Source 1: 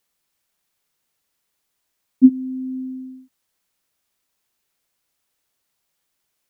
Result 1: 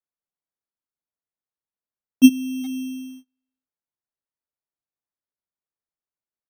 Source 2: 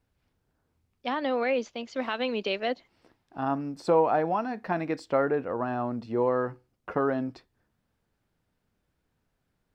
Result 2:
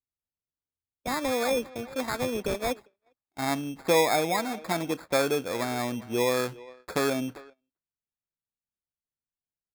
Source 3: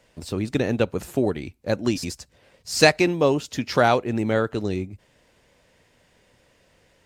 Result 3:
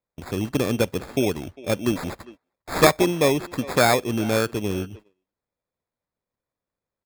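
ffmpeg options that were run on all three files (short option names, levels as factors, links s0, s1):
-filter_complex "[0:a]acrusher=samples=15:mix=1:aa=0.000001,asplit=2[s0][s1];[s1]adelay=400,highpass=300,lowpass=3400,asoftclip=type=hard:threshold=0.355,volume=0.126[s2];[s0][s2]amix=inputs=2:normalize=0,agate=range=0.0355:threshold=0.00794:ratio=16:detection=peak"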